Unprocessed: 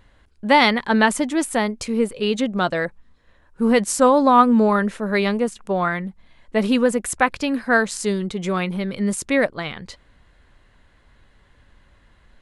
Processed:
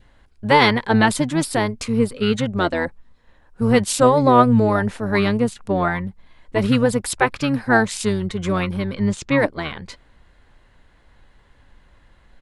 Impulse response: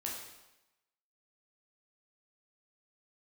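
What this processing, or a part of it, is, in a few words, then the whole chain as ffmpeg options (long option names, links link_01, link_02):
octave pedal: -filter_complex "[0:a]asettb=1/sr,asplit=3[link_01][link_02][link_03];[link_01]atrim=end=8.944[link_04];[link_02]atrim=start=8.94:end=9.38,asetpts=PTS-STARTPTS,afade=type=in:duration=0.004:curve=qsin,afade=type=out:start_time=0.436:duration=0.004:curve=qsin,lowpass=frequency=6600:width=0.5412,lowpass=frequency=6600:width=1.3066[link_05];[link_03]atrim=start=9.376[link_06];[link_04][link_05]acrossfade=duration=0.004:curve1=hsin:curve2=qsin[link_07];[link_07][link_06]acrossfade=duration=0.004:curve1=qsin:curve2=hsin,adynamicequalizer=threshold=0.0178:dfrequency=1100:dqfactor=3.6:tfrequency=1100:tqfactor=3.6:attack=5:release=100:ratio=0.375:range=2.5:mode=cutabove:tftype=bell,asplit=2[link_08][link_09];[link_09]asetrate=22050,aresample=44100,atempo=2,volume=-5dB[link_10];[link_08][link_10]amix=inputs=2:normalize=0"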